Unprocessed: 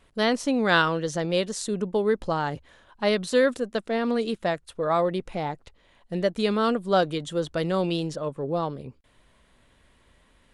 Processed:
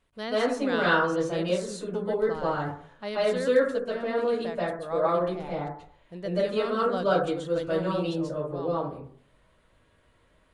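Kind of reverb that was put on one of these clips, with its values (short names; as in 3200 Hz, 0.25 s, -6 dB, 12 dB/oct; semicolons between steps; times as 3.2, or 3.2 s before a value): plate-style reverb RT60 0.55 s, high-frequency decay 0.3×, pre-delay 0.12 s, DRR -9 dB; gain -12 dB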